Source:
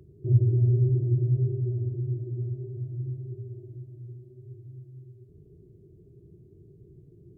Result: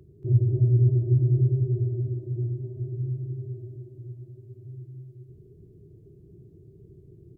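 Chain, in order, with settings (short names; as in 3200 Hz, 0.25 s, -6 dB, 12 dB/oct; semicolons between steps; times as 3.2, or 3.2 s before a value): loudspeakers at several distances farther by 79 m -4 dB, 97 m -6 dB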